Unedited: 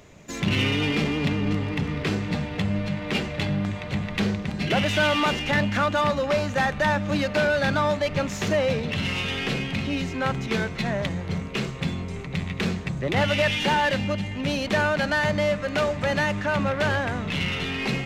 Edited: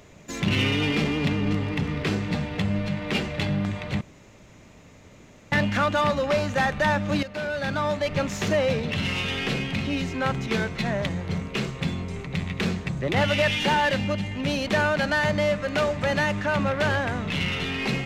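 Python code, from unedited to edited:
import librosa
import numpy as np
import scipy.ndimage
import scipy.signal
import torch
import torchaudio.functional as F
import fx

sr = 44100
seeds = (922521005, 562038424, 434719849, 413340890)

y = fx.edit(x, sr, fx.room_tone_fill(start_s=4.01, length_s=1.51),
    fx.fade_in_from(start_s=7.23, length_s=0.97, floor_db=-12.5), tone=tone)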